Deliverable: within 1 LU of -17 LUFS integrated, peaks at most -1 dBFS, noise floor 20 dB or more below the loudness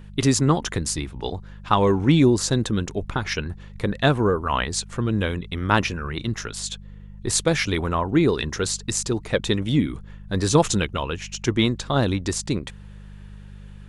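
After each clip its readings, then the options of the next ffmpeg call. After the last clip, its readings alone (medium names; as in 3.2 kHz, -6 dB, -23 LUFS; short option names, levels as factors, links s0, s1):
hum 50 Hz; highest harmonic 200 Hz; hum level -38 dBFS; loudness -23.0 LUFS; peak level -3.0 dBFS; loudness target -17.0 LUFS
-> -af "bandreject=f=50:t=h:w=4,bandreject=f=100:t=h:w=4,bandreject=f=150:t=h:w=4,bandreject=f=200:t=h:w=4"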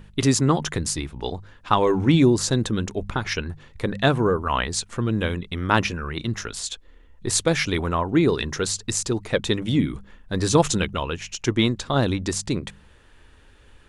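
hum not found; loudness -23.0 LUFS; peak level -2.5 dBFS; loudness target -17.0 LUFS
-> -af "volume=2,alimiter=limit=0.891:level=0:latency=1"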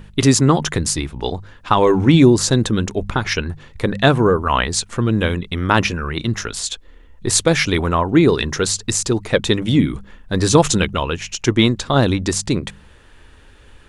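loudness -17.5 LUFS; peak level -1.0 dBFS; noise floor -46 dBFS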